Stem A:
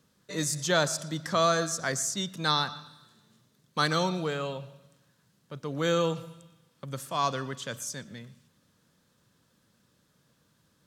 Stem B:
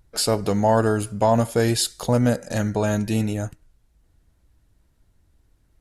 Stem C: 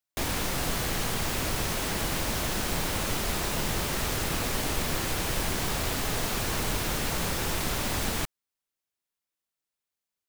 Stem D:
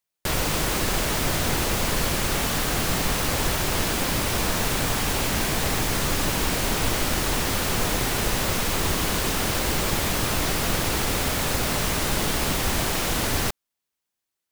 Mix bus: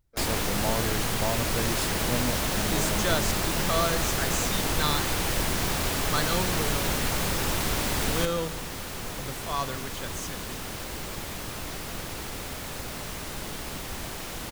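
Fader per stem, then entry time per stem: -3.0, -12.5, +1.5, -11.5 dB; 2.35, 0.00, 0.00, 1.25 s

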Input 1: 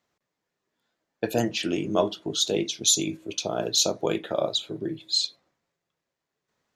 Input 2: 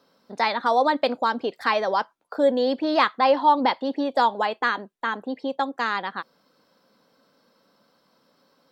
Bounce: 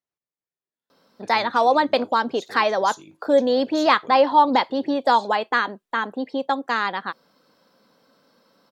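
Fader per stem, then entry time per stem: -18.0, +2.5 dB; 0.00, 0.90 s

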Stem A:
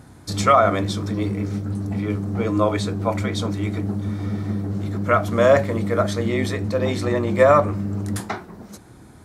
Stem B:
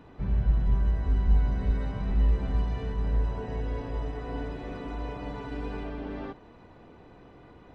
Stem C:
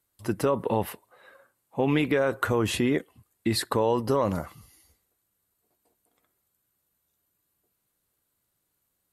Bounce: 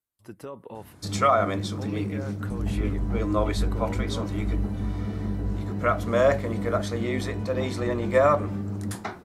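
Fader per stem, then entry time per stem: -5.5, -5.5, -14.5 dB; 0.75, 2.30, 0.00 s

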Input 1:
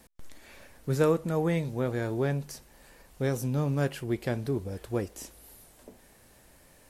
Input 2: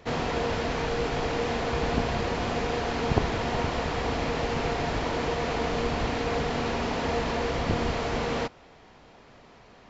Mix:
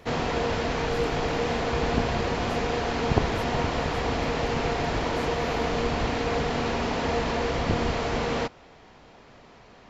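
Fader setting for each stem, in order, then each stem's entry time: -13.5, +1.5 dB; 0.00, 0.00 s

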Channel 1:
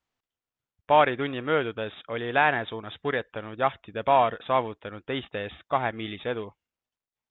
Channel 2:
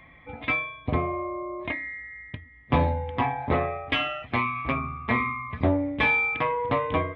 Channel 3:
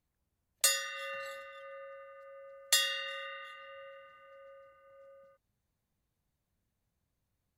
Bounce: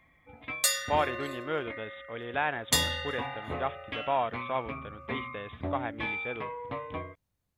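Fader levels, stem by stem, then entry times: -8.0, -12.0, +1.5 dB; 0.00, 0.00, 0.00 s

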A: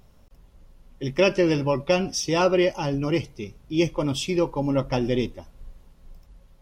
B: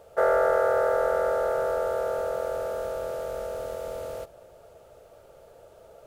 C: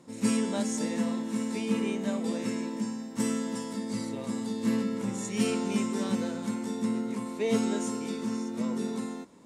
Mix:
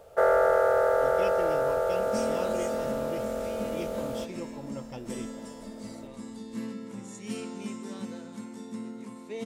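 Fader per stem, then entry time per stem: -17.0, 0.0, -8.5 dB; 0.00, 0.00, 1.90 s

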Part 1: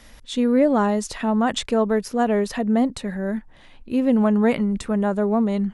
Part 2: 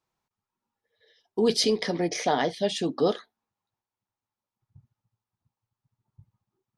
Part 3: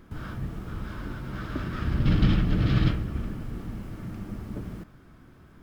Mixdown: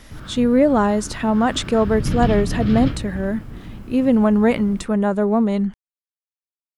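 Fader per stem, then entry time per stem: +2.5 dB, off, 0.0 dB; 0.00 s, off, 0.00 s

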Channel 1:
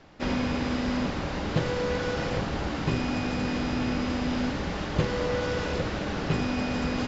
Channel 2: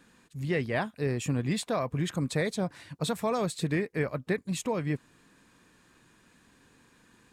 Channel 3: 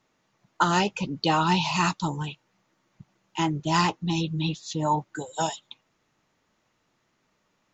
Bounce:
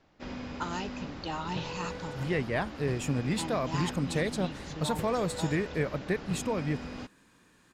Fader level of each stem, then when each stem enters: -12.0, -1.0, -13.5 dB; 0.00, 1.80, 0.00 s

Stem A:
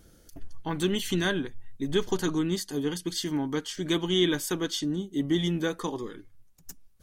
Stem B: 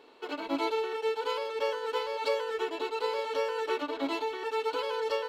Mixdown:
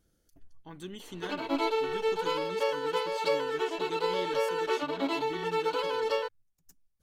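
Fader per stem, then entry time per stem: -15.5, +1.5 dB; 0.00, 1.00 s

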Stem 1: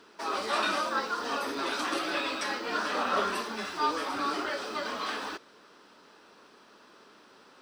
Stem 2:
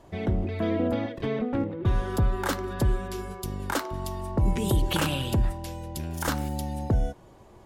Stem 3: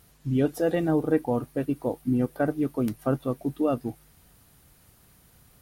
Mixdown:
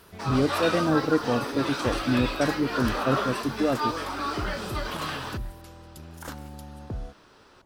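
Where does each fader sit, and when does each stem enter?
+0.5, -10.5, 0.0 dB; 0.00, 0.00, 0.00 s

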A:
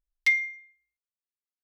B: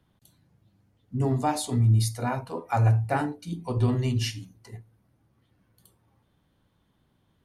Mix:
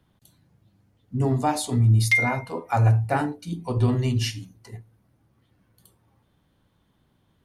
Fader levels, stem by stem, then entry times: +2.5, +2.5 dB; 1.85, 0.00 s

